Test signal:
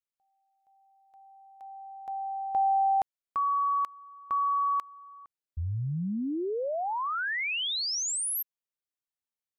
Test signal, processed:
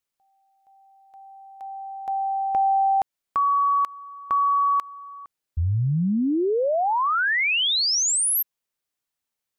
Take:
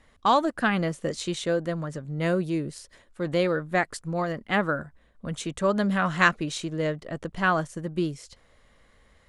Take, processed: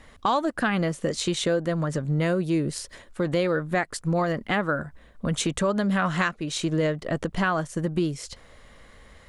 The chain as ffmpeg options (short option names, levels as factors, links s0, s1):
-af "acompressor=threshold=0.0447:ratio=5:attack=1.8:release=379:knee=1:detection=rms,volume=2.82"